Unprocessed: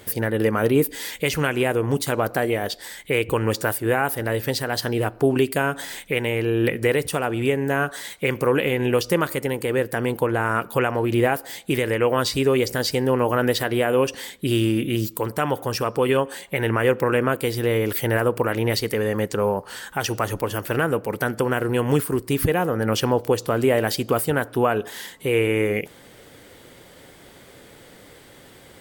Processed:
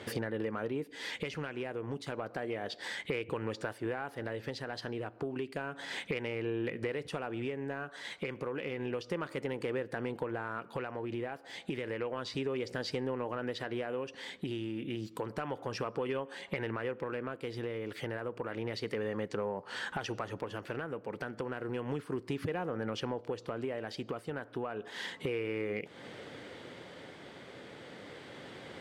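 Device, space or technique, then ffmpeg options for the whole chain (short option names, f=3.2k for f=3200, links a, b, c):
AM radio: -af "highpass=120,lowpass=4.1k,acompressor=threshold=-33dB:ratio=8,asoftclip=type=tanh:threshold=-22.5dB,tremolo=f=0.31:d=0.3,volume=1.5dB"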